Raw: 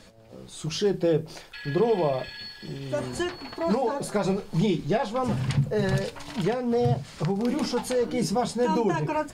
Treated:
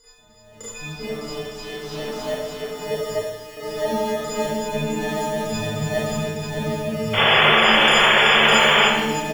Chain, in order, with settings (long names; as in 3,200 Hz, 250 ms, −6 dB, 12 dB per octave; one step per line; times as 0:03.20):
every partial snapped to a pitch grid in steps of 6 semitones
on a send: echo that builds up and dies away 93 ms, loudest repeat 8, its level −10 dB
0:00.84–0:02.60: on the sum: tube saturation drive 22 dB, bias 0.4
auto-filter low-pass saw down 3.3 Hz 550–7,200 Hz
three-band delay without the direct sound highs, mids, lows 40/180 ms, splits 1,100/4,300 Hz
in parallel at −4.5 dB: sample-rate reduction 2,500 Hz, jitter 0%
0:03.15–0:03.57: on the sum: guitar amp tone stack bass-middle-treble 5-5-5
0:07.13–0:08.85: sound drawn into the spectrogram noise 340–3,500 Hz −11 dBFS
four-comb reverb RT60 0.98 s, combs from 27 ms, DRR −9.5 dB
level −14 dB